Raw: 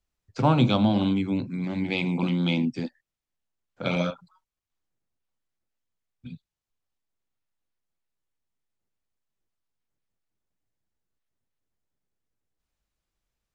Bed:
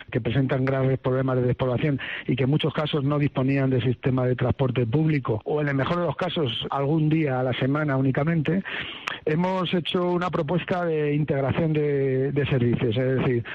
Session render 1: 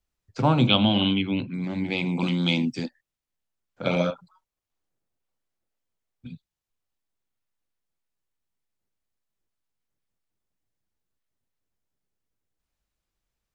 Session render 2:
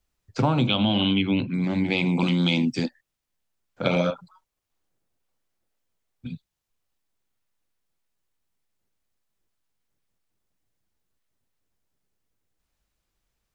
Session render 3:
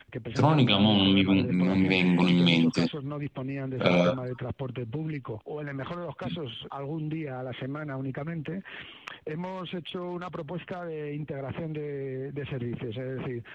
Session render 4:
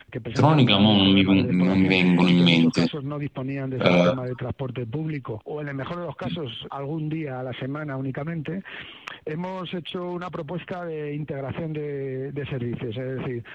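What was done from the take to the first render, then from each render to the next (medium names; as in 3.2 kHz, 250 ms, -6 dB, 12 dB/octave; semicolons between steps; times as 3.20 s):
0.67–1.54 s: resonant low-pass 3 kHz, resonance Q 6.9; 2.17–2.86 s: treble shelf 2.9 kHz +10 dB; 3.86–6.27 s: peaking EQ 520 Hz +4.5 dB 1.7 oct
in parallel at -2 dB: peak limiter -13.5 dBFS, peak gain reduction 10 dB; on the sum: compression, threshold -18 dBFS, peak gain reduction 7.5 dB
add bed -11.5 dB
trim +4.5 dB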